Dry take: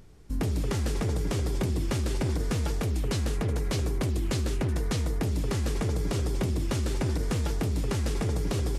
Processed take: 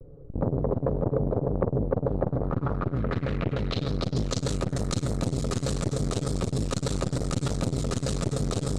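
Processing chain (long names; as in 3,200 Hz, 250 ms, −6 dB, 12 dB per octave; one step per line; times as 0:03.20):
lower of the sound and its delayed copy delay 7.1 ms
thirty-one-band graphic EQ 200 Hz −8 dB, 500 Hz +11 dB, 1,250 Hz +10 dB, 4,000 Hz +8 dB
low-pass filter sweep 530 Hz → 8,000 Hz, 0:01.98–0:04.53
bass and treble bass +11 dB, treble +3 dB
floating-point word with a short mantissa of 8 bits
saturating transformer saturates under 470 Hz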